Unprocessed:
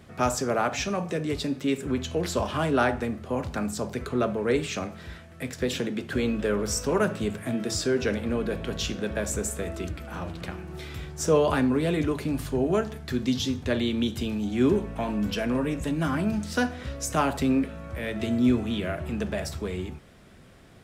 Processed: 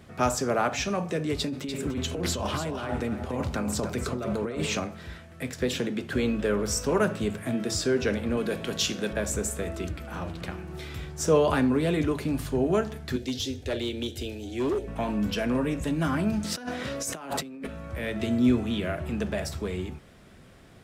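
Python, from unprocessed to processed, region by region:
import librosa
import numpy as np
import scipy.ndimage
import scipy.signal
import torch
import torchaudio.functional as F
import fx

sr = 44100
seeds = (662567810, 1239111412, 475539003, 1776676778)

y = fx.chain(x, sr, fx.over_compress(threshold_db=-30.0, ratio=-1.0),
    fx.notch(hz=1700.0, q=23.0),
    fx.echo_single(ms=294, db=-8.5), at=(1.39, 4.8))
y = fx.chain(y, sr, fx.highpass(hz=120.0, slope=12),
    fx.high_shelf(hz=3200.0, db=7.5), at=(8.37, 9.13))
y = fx.chain(y, sr, fx.fixed_phaser(hz=450.0, stages=4),
    fx.clip_hard(threshold_db=-23.5), at=(13.16, 14.88))
y = fx.chain(y, sr, fx.highpass(hz=180.0, slope=12),
    fx.over_compress(threshold_db=-35.0, ratio=-1.0), at=(16.44, 17.67))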